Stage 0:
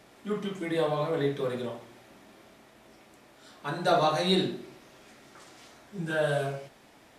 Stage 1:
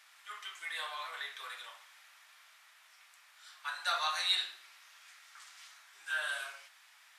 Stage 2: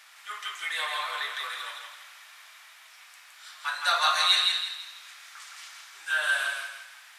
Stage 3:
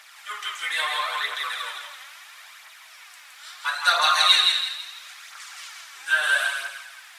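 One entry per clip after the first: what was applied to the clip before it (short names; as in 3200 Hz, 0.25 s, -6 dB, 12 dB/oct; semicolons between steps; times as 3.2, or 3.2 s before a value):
HPF 1200 Hz 24 dB/oct
thinning echo 0.165 s, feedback 38%, high-pass 650 Hz, level -3.5 dB; gain +8 dB
phaser 0.75 Hz, delay 4 ms, feedback 45%; gain +4 dB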